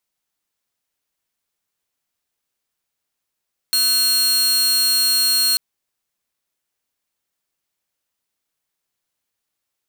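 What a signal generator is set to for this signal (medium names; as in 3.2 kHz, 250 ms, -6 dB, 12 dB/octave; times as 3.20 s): tone saw 4.26 kHz -12 dBFS 1.84 s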